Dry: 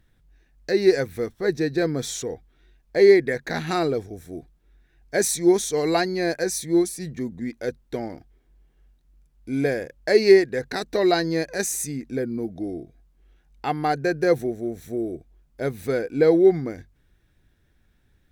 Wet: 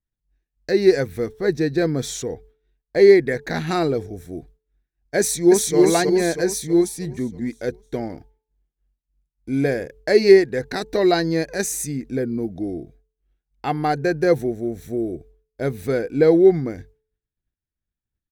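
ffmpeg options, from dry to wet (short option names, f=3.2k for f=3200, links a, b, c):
-filter_complex "[0:a]asplit=2[a][b];[b]afade=t=in:st=5.19:d=0.01,afade=t=out:st=5.77:d=0.01,aecho=0:1:320|640|960|1280|1600|1920|2240:0.841395|0.420698|0.210349|0.105174|0.0525872|0.0262936|0.0131468[c];[a][c]amix=inputs=2:normalize=0,agate=range=-33dB:threshold=-44dB:ratio=3:detection=peak,lowshelf=f=290:g=4.5,bandreject=f=435.5:t=h:w=4,bandreject=f=871:t=h:w=4,volume=1dB"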